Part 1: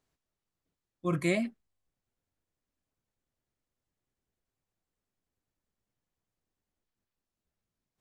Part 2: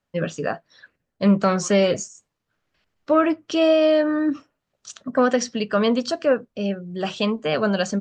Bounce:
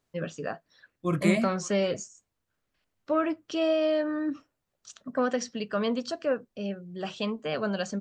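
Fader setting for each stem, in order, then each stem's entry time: +2.5 dB, -8.5 dB; 0.00 s, 0.00 s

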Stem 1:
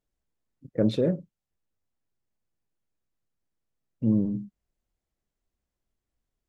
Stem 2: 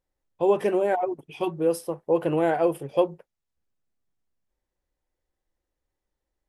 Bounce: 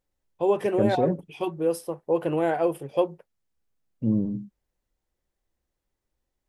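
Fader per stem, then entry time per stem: -0.5 dB, -1.5 dB; 0.00 s, 0.00 s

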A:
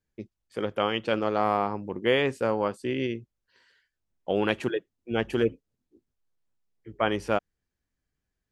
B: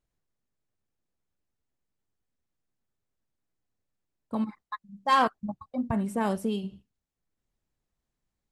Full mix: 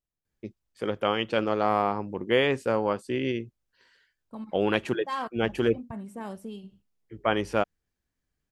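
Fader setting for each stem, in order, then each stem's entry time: +0.5 dB, -10.0 dB; 0.25 s, 0.00 s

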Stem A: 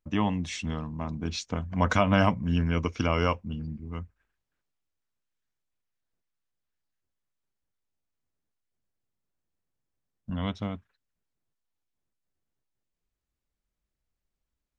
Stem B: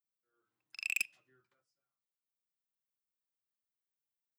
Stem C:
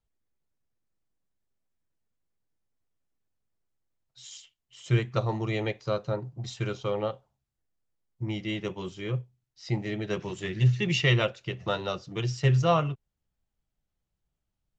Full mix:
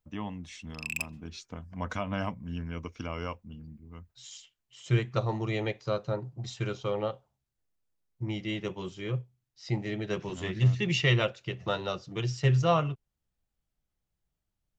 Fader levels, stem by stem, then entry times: -10.5 dB, 0.0 dB, -1.5 dB; 0.00 s, 0.00 s, 0.00 s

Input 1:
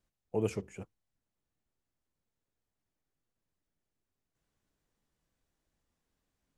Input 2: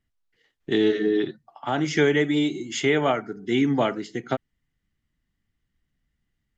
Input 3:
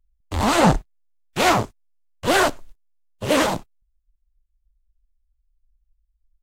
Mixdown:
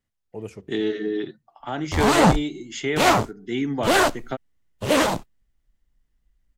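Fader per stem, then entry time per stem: -3.5 dB, -4.0 dB, -0.5 dB; 0.00 s, 0.00 s, 1.60 s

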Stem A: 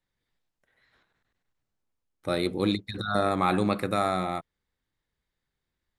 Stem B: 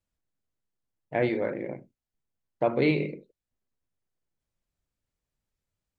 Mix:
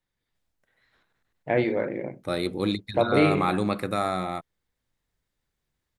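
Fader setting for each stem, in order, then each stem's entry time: -0.5 dB, +2.5 dB; 0.00 s, 0.35 s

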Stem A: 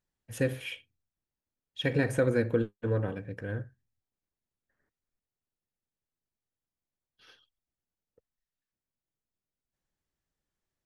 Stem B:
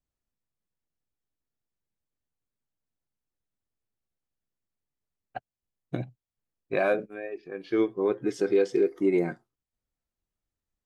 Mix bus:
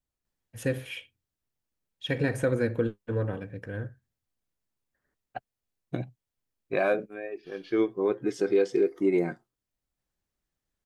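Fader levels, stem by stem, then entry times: 0.0 dB, -0.5 dB; 0.25 s, 0.00 s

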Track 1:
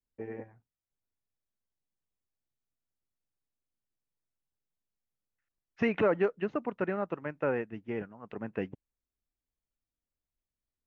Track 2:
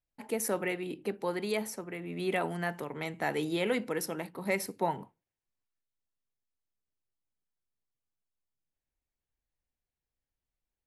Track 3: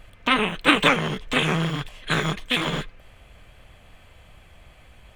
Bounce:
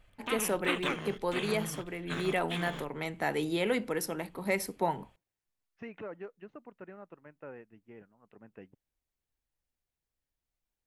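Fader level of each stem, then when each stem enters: -16.0 dB, +0.5 dB, -15.5 dB; 0.00 s, 0.00 s, 0.00 s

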